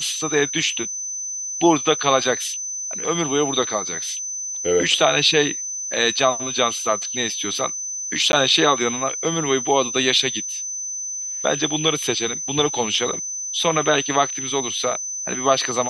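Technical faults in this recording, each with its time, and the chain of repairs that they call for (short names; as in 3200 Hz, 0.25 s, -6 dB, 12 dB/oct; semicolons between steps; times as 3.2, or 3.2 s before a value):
tone 6100 Hz -26 dBFS
8.32–8.33 gap 11 ms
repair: notch 6100 Hz, Q 30; interpolate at 8.32, 11 ms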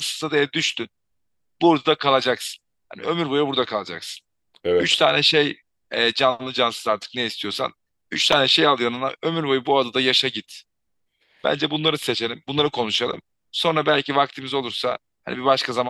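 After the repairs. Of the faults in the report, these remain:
none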